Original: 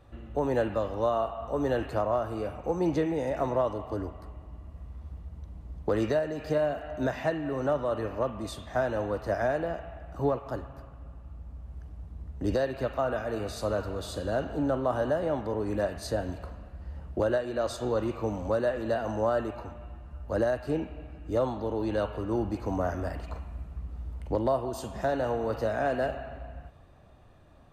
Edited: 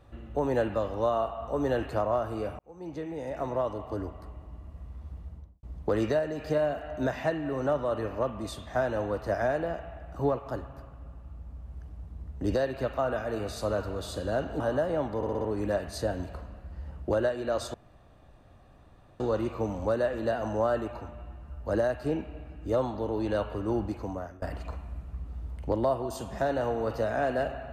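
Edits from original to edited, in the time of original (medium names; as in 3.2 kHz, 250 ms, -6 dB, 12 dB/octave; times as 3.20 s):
2.59–4.47 s: fade in equal-power
5.27–5.63 s: studio fade out
14.60–14.93 s: delete
15.50 s: stutter 0.06 s, 5 plays
17.83 s: insert room tone 1.46 s
22.44–23.05 s: fade out, to -23 dB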